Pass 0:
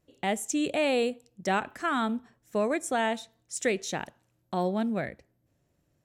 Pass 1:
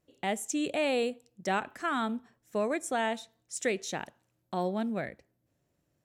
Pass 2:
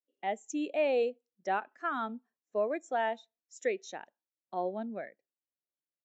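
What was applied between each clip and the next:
bass shelf 100 Hz -6 dB; trim -2.5 dB
Bessel high-pass 340 Hz, order 2; resampled via 16 kHz; spectral contrast expander 1.5:1; trim -2.5 dB

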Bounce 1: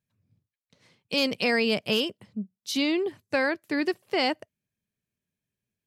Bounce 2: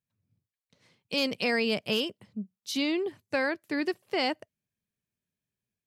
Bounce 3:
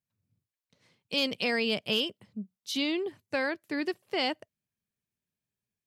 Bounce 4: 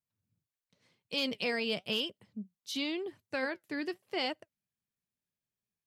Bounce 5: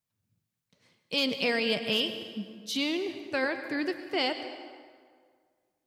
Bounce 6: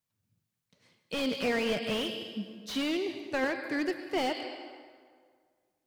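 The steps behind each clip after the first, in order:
level rider gain up to 4 dB; trim -7 dB
dynamic bell 3.3 kHz, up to +6 dB, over -46 dBFS, Q 3.1; trim -2 dB
flange 0.93 Hz, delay 1.3 ms, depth 6.5 ms, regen +72%
plate-style reverb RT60 1.9 s, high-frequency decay 0.65×, pre-delay 90 ms, DRR 9 dB; trim +5 dB
slew-rate limiter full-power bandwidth 58 Hz

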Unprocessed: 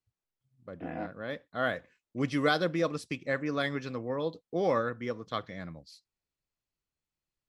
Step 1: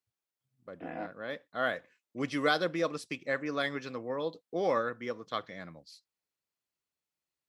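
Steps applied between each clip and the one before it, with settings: high-pass 310 Hz 6 dB/octave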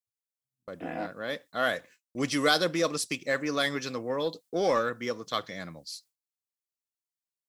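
gate with hold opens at -57 dBFS; tone controls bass +1 dB, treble +13 dB; in parallel at -5.5 dB: saturation -29 dBFS, distortion -8 dB; on the sum: trim +1 dB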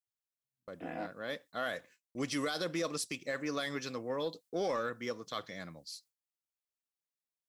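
peak limiter -20 dBFS, peak gain reduction 9.5 dB; trim -5.5 dB

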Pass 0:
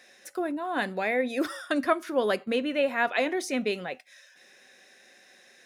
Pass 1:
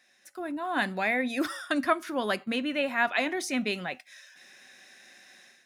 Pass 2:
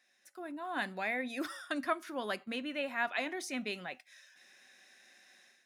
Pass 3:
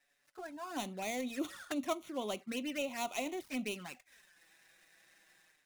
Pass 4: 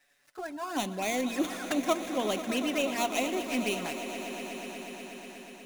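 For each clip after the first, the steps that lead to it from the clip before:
peaking EQ 470 Hz -10.5 dB 0.64 oct; level rider gain up to 12 dB; trim -9 dB
bass shelf 150 Hz -7.5 dB; trim -7.5 dB
dead-time distortion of 0.095 ms; touch-sensitive flanger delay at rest 7.3 ms, full sweep at -34.5 dBFS; trim +1.5 dB
echo with a slow build-up 121 ms, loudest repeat 5, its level -14.5 dB; trim +7.5 dB

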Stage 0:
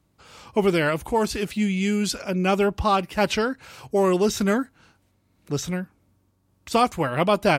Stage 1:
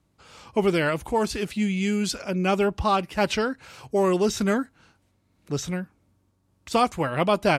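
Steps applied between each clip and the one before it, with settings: low-pass 12 kHz 12 dB/octave; trim -1.5 dB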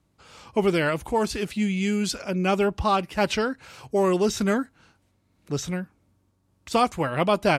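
no audible change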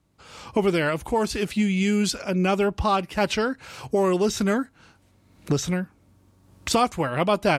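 recorder AGC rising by 13 dB/s

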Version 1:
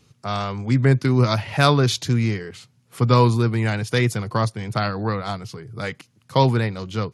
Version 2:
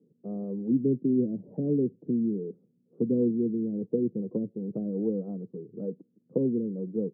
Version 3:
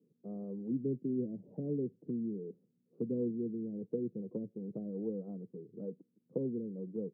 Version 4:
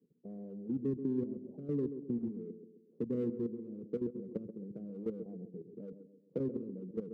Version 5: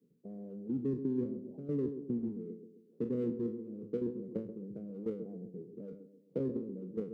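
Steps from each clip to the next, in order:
low-pass that closes with the level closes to 330 Hz, closed at -17 dBFS; elliptic band-pass 180–480 Hz, stop band 70 dB
dynamic bell 270 Hz, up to -3 dB, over -34 dBFS, Q 1.5; trim -7.5 dB
local Wiener filter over 25 samples; level held to a coarse grid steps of 12 dB; band-passed feedback delay 132 ms, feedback 50%, band-pass 320 Hz, level -8.5 dB; trim +3 dB
spectral sustain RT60 0.35 s

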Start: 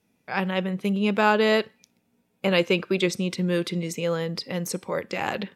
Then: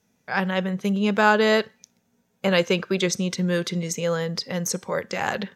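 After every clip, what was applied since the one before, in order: graphic EQ with 31 bands 315 Hz -8 dB, 1.6 kHz +4 dB, 2.5 kHz -5 dB, 6.3 kHz +9 dB, 10 kHz -4 dB; trim +2 dB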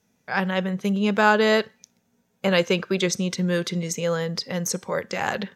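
no audible change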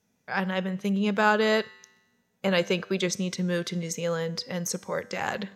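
feedback comb 98 Hz, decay 1.1 s, harmonics all, mix 40%

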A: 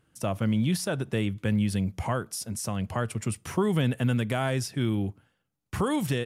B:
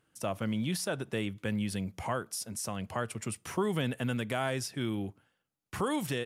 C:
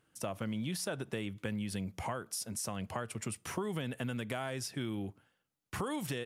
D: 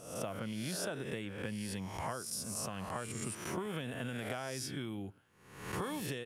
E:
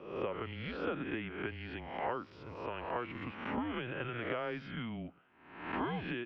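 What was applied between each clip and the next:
bass shelf 180 Hz -10 dB; trim -2.5 dB
compression, threshold -33 dBFS, peak gain reduction 7.5 dB
reverse spectral sustain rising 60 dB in 0.77 s; trim -4 dB
mistuned SSB -120 Hz 280–3100 Hz; trim +4 dB

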